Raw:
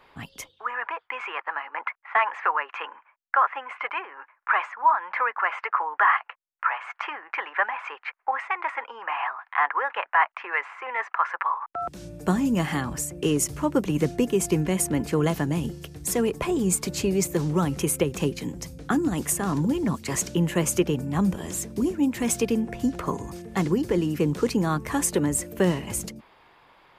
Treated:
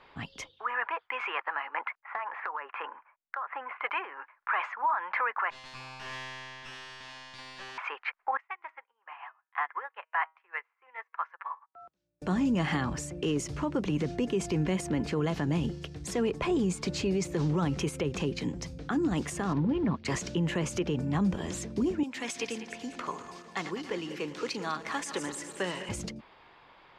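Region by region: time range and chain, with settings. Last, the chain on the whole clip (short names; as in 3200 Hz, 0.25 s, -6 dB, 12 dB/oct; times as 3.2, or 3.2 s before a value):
2–3.84 LPF 1900 Hz + compressor 10:1, threshold -30 dBFS
5.5–7.78 minimum comb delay 1.1 ms + resonator 130 Hz, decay 1.9 s, mix 100% + spectral compressor 2:1
8.37–12.22 low shelf 280 Hz -7 dB + de-hum 159.3 Hz, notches 28 + upward expander 2.5:1, over -43 dBFS
19.53–20.05 G.711 law mismatch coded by A + air absorption 270 m
22.03–25.89 regenerating reverse delay 0.1 s, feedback 70%, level -11 dB + HPF 1300 Hz 6 dB/oct
whole clip: limiter -19.5 dBFS; Chebyshev low-pass 4600 Hz, order 2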